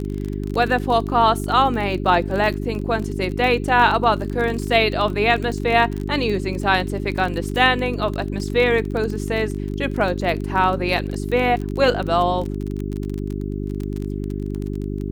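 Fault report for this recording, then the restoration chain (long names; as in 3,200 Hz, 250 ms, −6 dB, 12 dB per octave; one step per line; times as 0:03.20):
surface crackle 29 per second −25 dBFS
mains hum 50 Hz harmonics 8 −26 dBFS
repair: click removal
hum removal 50 Hz, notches 8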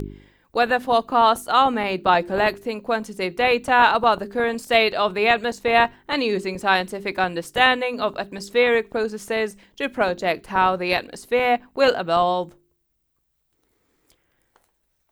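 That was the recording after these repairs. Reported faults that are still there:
none of them is left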